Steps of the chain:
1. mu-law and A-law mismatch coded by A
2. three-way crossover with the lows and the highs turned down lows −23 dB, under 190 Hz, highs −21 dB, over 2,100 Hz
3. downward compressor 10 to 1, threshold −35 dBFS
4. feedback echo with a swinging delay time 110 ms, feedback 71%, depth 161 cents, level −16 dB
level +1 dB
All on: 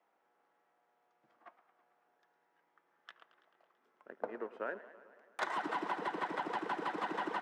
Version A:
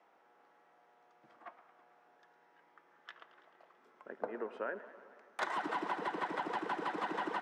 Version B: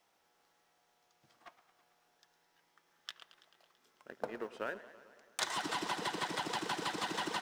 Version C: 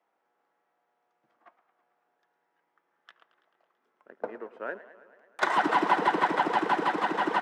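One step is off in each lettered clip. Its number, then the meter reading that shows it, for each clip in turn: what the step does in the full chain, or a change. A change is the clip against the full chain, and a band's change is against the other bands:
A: 1, distortion level −24 dB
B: 2, 8 kHz band +17.0 dB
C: 3, change in momentary loudness spread −3 LU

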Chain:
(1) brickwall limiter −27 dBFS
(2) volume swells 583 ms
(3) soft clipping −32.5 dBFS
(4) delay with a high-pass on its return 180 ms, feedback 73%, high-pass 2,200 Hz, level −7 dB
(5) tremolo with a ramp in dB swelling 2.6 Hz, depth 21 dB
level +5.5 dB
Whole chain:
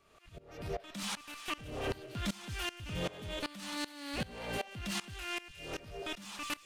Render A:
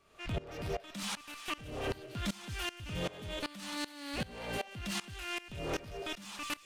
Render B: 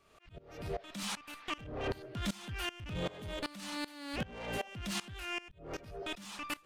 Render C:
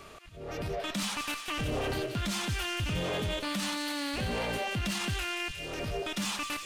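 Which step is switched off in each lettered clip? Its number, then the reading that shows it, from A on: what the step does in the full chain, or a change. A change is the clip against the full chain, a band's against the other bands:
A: 2, change in momentary loudness spread −3 LU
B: 4, change in momentary loudness spread +1 LU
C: 5, change in crest factor −5.0 dB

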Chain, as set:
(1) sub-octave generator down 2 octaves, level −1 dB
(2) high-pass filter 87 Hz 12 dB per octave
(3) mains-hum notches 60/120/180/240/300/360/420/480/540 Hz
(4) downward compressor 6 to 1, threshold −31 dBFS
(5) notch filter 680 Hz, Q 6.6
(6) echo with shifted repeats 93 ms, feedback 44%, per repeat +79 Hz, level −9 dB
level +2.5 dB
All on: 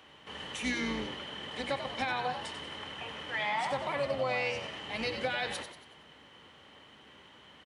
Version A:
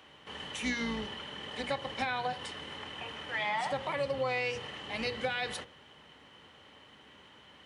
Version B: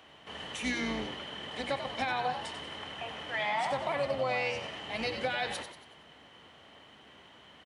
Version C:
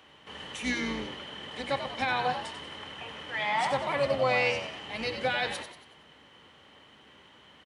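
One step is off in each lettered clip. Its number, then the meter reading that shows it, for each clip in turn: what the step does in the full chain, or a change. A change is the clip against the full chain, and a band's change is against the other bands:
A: 6, echo-to-direct ratio −8.0 dB to none audible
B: 5, change in momentary loudness spread −13 LU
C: 4, change in crest factor +2.0 dB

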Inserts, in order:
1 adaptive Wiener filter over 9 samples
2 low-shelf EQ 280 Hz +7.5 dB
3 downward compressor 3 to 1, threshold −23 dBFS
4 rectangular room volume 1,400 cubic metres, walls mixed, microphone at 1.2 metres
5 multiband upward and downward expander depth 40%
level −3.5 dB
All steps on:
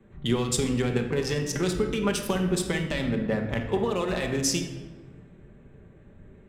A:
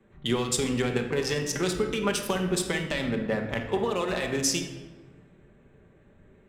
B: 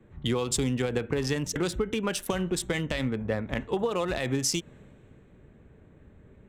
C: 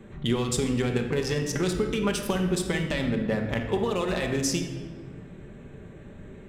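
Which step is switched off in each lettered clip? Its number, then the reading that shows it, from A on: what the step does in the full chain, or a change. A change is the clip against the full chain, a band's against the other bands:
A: 2, 125 Hz band −5.0 dB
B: 4, change in crest factor +2.5 dB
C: 5, 8 kHz band −2.0 dB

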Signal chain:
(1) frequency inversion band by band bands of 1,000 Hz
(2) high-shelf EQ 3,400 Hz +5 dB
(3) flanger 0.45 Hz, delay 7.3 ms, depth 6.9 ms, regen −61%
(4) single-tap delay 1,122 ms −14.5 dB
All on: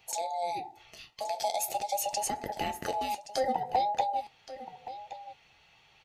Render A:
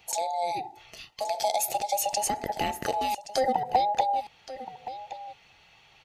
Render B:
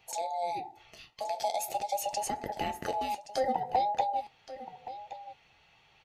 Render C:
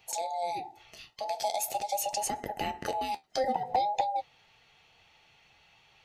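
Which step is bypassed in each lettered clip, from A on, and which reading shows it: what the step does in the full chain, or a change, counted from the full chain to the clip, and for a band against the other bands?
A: 3, change in integrated loudness +4.0 LU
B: 2, 8 kHz band −4.0 dB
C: 4, change in momentary loudness spread −5 LU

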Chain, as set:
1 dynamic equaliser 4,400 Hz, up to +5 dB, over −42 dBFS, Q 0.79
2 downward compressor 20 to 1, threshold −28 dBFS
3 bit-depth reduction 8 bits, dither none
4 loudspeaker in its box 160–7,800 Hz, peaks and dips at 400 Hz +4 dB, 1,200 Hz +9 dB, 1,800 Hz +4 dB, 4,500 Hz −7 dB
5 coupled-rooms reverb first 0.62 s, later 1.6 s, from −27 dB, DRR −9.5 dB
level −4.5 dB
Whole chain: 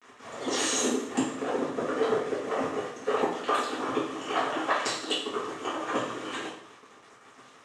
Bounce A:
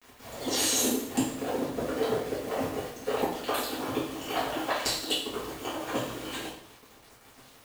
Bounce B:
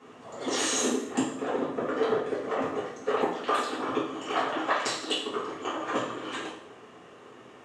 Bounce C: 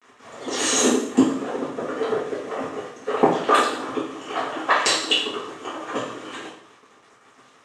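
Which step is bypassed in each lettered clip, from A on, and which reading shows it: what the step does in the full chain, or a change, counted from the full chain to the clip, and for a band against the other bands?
4, 125 Hz band +6.0 dB
3, distortion level −16 dB
2, average gain reduction 3.0 dB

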